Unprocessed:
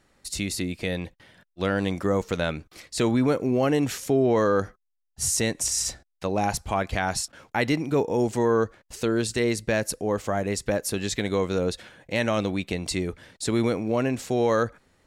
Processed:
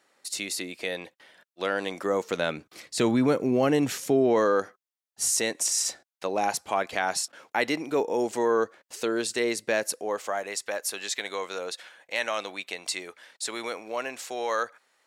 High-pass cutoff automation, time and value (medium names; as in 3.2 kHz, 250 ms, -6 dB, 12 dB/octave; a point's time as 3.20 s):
1.89 s 430 Hz
2.98 s 150 Hz
4.03 s 150 Hz
4.60 s 360 Hz
9.72 s 360 Hz
10.57 s 760 Hz